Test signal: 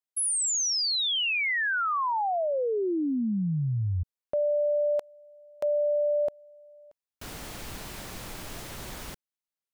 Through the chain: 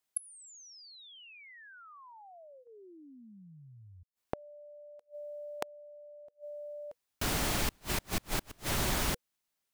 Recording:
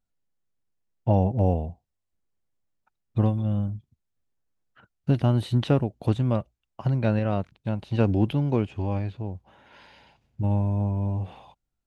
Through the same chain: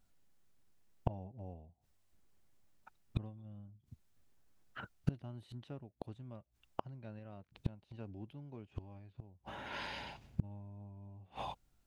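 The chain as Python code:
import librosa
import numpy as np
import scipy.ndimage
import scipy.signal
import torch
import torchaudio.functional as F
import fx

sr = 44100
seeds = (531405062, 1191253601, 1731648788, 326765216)

y = fx.notch(x, sr, hz=490.0, q=12.0)
y = fx.gate_flip(y, sr, shuts_db=-28.0, range_db=-35)
y = F.gain(torch.from_numpy(y), 9.0).numpy()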